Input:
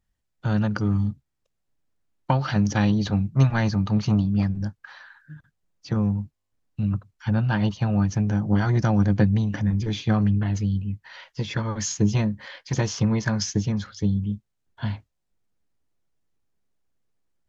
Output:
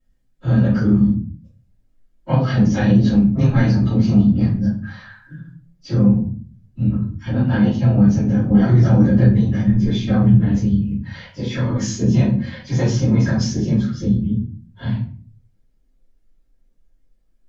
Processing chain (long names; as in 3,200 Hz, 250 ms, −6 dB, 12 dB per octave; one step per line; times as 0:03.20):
random phases in long frames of 50 ms
parametric band 240 Hz +9 dB 1.6 octaves
in parallel at −2.5 dB: downward compressor, threshold −35 dBFS, peak gain reduction 24.5 dB
0:10.28–0:10.94: on the sum: bit-depth reduction 12 bits, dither none
rectangular room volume 34 cubic metres, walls mixed, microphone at 2.2 metres
level −12.5 dB